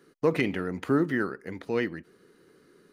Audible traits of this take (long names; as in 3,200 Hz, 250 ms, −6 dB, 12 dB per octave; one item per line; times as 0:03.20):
background noise floor −63 dBFS
spectral slope −5.5 dB per octave